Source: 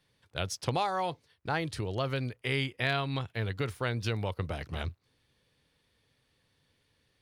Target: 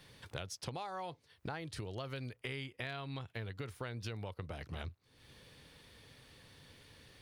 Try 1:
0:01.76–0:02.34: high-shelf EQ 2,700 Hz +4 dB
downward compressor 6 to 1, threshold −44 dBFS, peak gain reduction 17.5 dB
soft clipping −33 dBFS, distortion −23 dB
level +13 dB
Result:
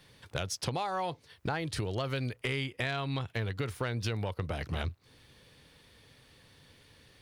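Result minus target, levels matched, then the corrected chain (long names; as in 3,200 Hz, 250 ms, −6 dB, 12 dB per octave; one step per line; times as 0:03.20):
downward compressor: peak gain reduction −9.5 dB
0:01.76–0:02.34: high-shelf EQ 2,700 Hz +4 dB
downward compressor 6 to 1, threshold −55.5 dBFS, peak gain reduction 27 dB
soft clipping −33 dBFS, distortion −39 dB
level +13 dB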